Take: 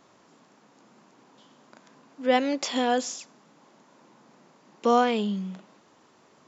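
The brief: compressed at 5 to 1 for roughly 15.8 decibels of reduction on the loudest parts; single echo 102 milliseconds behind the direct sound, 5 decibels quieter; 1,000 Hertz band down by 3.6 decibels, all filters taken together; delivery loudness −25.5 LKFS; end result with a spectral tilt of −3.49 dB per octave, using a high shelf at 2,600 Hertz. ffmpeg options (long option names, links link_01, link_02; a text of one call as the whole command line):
ffmpeg -i in.wav -af "equalizer=frequency=1000:width_type=o:gain=-6.5,highshelf=frequency=2600:gain=5.5,acompressor=threshold=-36dB:ratio=5,aecho=1:1:102:0.562,volume=12.5dB" out.wav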